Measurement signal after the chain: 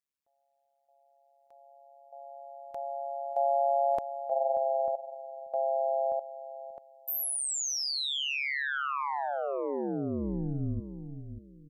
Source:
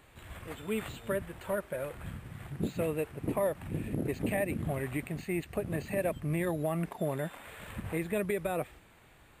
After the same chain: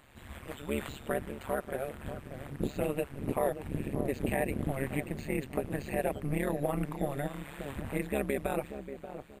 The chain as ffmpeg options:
-filter_complex "[0:a]asplit=2[a][b];[b]adelay=585,lowpass=f=870:p=1,volume=-9dB,asplit=2[c][d];[d]adelay=585,lowpass=f=870:p=1,volume=0.29,asplit=2[e][f];[f]adelay=585,lowpass=f=870:p=1,volume=0.29[g];[a][c][e][g]amix=inputs=4:normalize=0,tremolo=f=140:d=1,volume=4dB"

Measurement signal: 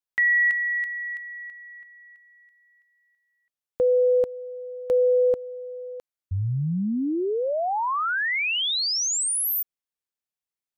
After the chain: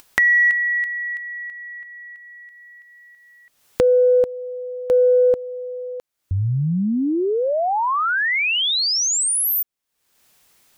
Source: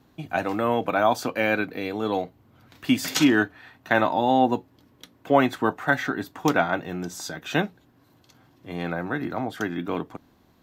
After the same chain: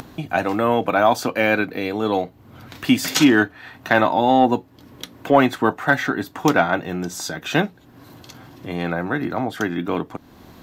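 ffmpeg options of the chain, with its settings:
-filter_complex "[0:a]asplit=2[a][b];[b]acompressor=mode=upward:threshold=-31dB:ratio=2.5:attack=65:release=294:knee=2.83:detection=peak,volume=-2dB[c];[a][c]amix=inputs=2:normalize=0,asoftclip=type=tanh:threshold=-0.5dB"

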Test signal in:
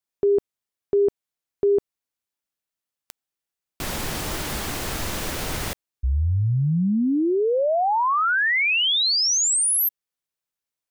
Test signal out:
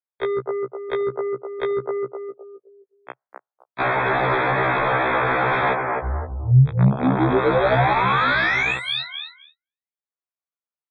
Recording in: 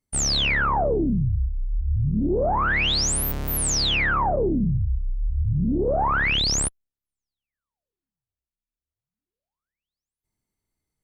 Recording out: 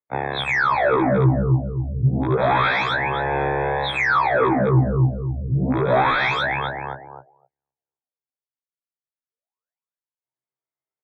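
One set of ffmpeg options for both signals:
-filter_complex "[0:a]acrossover=split=330 2300:gain=0.1 1 0.251[a][b][c];[a][b][c]amix=inputs=3:normalize=0,acrossover=split=1300[d][e];[d]asoftclip=type=tanh:threshold=-33dB[f];[f][e]amix=inputs=2:normalize=0,highpass=f=62:w=0.5412,highpass=f=62:w=1.3066,acompressor=threshold=-38dB:ratio=20:attack=6.2:release=392:knee=6:detection=peak,asplit=2[g][h];[h]adelay=259,lowpass=f=1.4k:p=1,volume=-4dB,asplit=2[i][j];[j]adelay=259,lowpass=f=1.4k:p=1,volume=0.39,asplit=2[k][l];[l]adelay=259,lowpass=f=1.4k:p=1,volume=0.39,asplit=2[m][n];[n]adelay=259,lowpass=f=1.4k:p=1,volume=0.39,asplit=2[o][p];[p]adelay=259,lowpass=f=1.4k:p=1,volume=0.39[q];[g][i][k][m][o][q]amix=inputs=6:normalize=0,aresample=8000,aeval=exprs='(mod(47.3*val(0)+1,2)-1)/47.3':c=same,aresample=44100,asplit=2[r][s];[s]highpass=f=720:p=1,volume=17dB,asoftclip=type=tanh:threshold=-29.5dB[t];[r][t]amix=inputs=2:normalize=0,lowpass=f=1.3k:p=1,volume=-6dB,asuperstop=centerf=2900:order=12:qfactor=4.9,equalizer=f=130:t=o:w=0.28:g=14.5,afftdn=nr=34:nf=-57,alimiter=level_in=30dB:limit=-1dB:release=50:level=0:latency=1,afftfilt=real='re*1.73*eq(mod(b,3),0)':imag='im*1.73*eq(mod(b,3),0)':win_size=2048:overlap=0.75,volume=-8dB"

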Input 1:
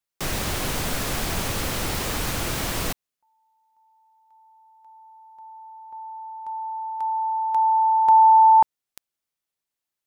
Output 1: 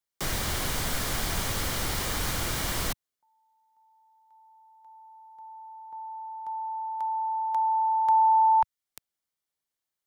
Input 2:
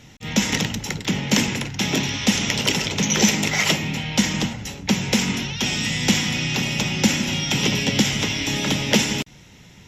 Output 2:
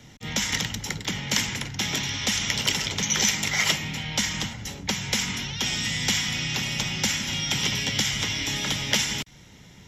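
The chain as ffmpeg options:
-filter_complex "[0:a]bandreject=f=2.6k:w=11,acrossover=split=120|910|2600[a][b][c][d];[b]acompressor=threshold=-35dB:ratio=6:attack=52:release=277:detection=rms[e];[a][e][c][d]amix=inputs=4:normalize=0,volume=-2dB"

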